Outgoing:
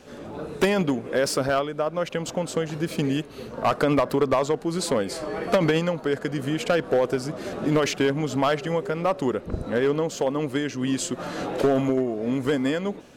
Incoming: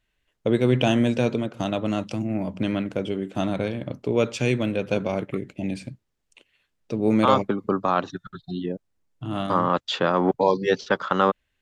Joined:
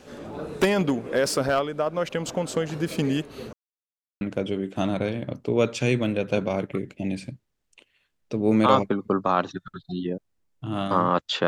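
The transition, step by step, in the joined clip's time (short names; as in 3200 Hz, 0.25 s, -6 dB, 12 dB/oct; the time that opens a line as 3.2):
outgoing
3.53–4.21 mute
4.21 switch to incoming from 2.8 s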